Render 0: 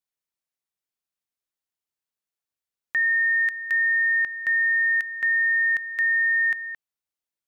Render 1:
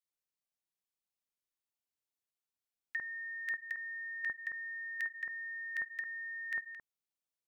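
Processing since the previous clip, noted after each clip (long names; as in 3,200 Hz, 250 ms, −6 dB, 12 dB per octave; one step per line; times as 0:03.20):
noise gate −29 dBFS, range −10 dB
compressor whose output falls as the input rises −27 dBFS, ratio −0.5
multiband delay without the direct sound highs, lows 50 ms, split 1,500 Hz
level −3 dB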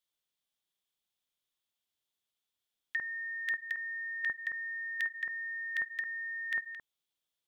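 parametric band 3,400 Hz +11.5 dB 0.4 octaves
level +3 dB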